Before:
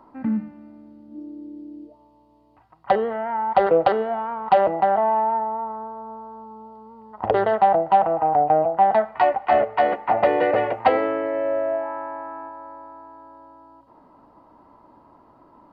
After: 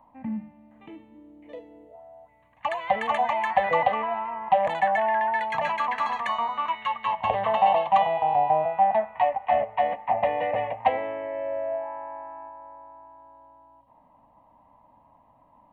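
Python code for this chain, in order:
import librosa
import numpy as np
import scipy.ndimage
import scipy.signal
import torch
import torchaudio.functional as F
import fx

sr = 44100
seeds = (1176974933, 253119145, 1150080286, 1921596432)

y = fx.echo_pitch(x, sr, ms=712, semitones=7, count=2, db_per_echo=-3.0)
y = fx.fixed_phaser(y, sr, hz=1400.0, stages=6)
y = F.gain(torch.from_numpy(y), -3.5).numpy()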